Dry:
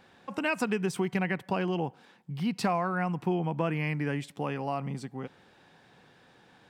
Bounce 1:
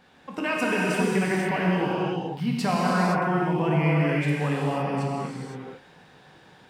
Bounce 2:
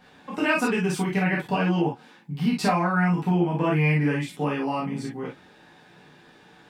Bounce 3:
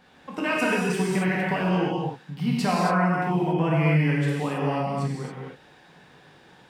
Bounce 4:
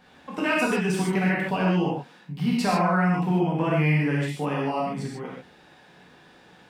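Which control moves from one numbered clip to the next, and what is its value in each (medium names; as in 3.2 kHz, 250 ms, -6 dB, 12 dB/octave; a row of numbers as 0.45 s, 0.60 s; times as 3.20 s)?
gated-style reverb, gate: 540 ms, 80 ms, 300 ms, 170 ms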